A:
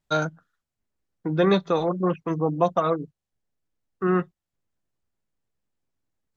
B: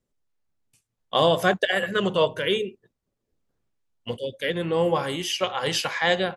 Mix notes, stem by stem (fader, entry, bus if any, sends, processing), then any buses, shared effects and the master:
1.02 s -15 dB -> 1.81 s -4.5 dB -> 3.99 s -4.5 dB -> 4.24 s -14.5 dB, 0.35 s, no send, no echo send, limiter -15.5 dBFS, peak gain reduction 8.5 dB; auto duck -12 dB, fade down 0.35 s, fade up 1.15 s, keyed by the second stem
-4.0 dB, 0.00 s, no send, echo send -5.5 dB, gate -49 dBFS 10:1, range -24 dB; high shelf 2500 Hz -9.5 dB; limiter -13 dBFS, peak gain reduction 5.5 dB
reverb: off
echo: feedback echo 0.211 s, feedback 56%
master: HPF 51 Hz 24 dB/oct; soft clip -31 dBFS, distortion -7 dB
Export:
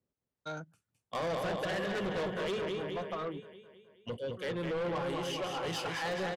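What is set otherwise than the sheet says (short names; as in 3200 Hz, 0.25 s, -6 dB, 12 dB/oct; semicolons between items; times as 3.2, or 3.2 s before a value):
stem A: missing limiter -15.5 dBFS, peak gain reduction 8.5 dB; stem B: missing gate -49 dBFS 10:1, range -24 dB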